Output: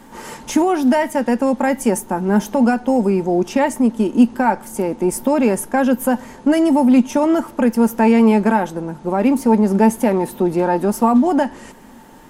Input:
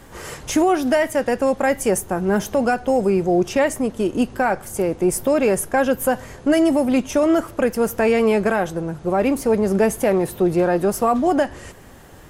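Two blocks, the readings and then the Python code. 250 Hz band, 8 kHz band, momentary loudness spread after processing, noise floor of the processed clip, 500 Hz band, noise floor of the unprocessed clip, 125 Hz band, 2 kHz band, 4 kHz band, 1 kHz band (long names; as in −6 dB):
+5.5 dB, −1.0 dB, 7 LU, −42 dBFS, −0.5 dB, −43 dBFS, +2.0 dB, −1.0 dB, −1.0 dB, +3.5 dB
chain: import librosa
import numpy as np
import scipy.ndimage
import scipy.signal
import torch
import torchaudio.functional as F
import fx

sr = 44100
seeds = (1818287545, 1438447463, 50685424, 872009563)

y = fx.peak_eq(x, sr, hz=86.0, db=-11.5, octaves=1.5)
y = fx.small_body(y, sr, hz=(230.0, 890.0), ring_ms=55, db=14)
y = y * librosa.db_to_amplitude(-1.0)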